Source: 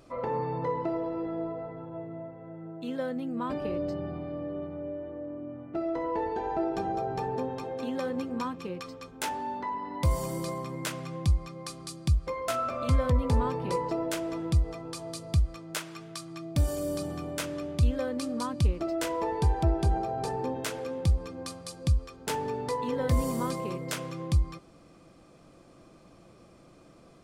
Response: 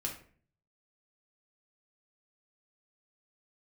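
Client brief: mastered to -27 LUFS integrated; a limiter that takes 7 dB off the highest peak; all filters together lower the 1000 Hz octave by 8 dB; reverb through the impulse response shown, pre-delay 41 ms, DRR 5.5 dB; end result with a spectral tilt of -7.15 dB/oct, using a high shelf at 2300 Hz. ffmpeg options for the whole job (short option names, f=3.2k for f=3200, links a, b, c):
-filter_complex "[0:a]equalizer=f=1k:t=o:g=-8.5,highshelf=f=2.3k:g=-8.5,alimiter=limit=-22dB:level=0:latency=1,asplit=2[a][b];[1:a]atrim=start_sample=2205,adelay=41[c];[b][c]afir=irnorm=-1:irlink=0,volume=-6.5dB[d];[a][d]amix=inputs=2:normalize=0,volume=7dB"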